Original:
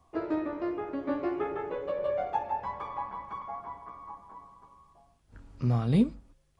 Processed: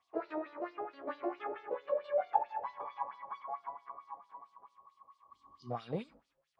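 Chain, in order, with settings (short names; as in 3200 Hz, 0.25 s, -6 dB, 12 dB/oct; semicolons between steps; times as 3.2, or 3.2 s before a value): spectral repair 4.87–5.68, 410–2900 Hz before; LFO band-pass sine 4.5 Hz 550–4600 Hz; gain +2.5 dB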